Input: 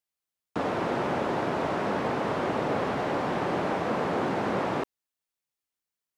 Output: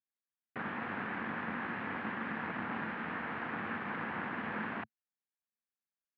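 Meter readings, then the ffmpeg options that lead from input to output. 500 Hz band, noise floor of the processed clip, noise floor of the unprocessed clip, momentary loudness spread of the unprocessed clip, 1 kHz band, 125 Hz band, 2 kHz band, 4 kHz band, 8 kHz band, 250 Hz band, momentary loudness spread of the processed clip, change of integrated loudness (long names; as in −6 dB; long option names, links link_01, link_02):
−18.0 dB, below −85 dBFS, below −85 dBFS, 3 LU, −10.5 dB, −12.0 dB, −2.0 dB, −12.0 dB, below −30 dB, −10.0 dB, 3 LU, −9.5 dB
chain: -af "aeval=exprs='abs(val(0))':channel_layout=same,highpass=frequency=110:width=0.5412,highpass=frequency=110:width=1.3066,equalizer=frequency=130:width_type=q:width=4:gain=-7,equalizer=frequency=220:width_type=q:width=4:gain=9,equalizer=frequency=400:width_type=q:width=4:gain=-4,equalizer=frequency=600:width_type=q:width=4:gain=-7,equalizer=frequency=1700:width_type=q:width=4:gain=6,lowpass=frequency=2600:width=0.5412,lowpass=frequency=2600:width=1.3066,volume=-6.5dB"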